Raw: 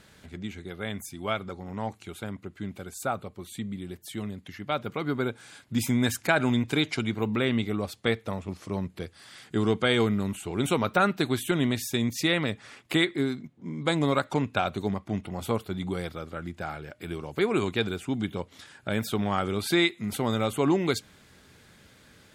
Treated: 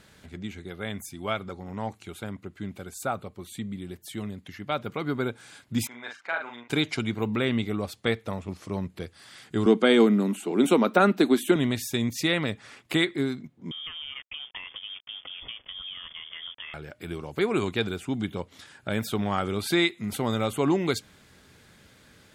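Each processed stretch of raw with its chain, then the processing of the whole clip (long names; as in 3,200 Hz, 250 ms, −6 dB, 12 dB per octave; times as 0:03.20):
0:05.87–0:06.70: high-pass filter 990 Hz + head-to-tape spacing loss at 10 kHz 36 dB + double-tracking delay 42 ms −4 dB
0:09.66–0:11.56: Butterworth high-pass 210 Hz + low-shelf EQ 470 Hz +11 dB
0:13.71–0:16.74: downward compressor 16 to 1, threshold −34 dBFS + centre clipping without the shift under −48.5 dBFS + voice inversion scrambler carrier 3,400 Hz
whole clip: no processing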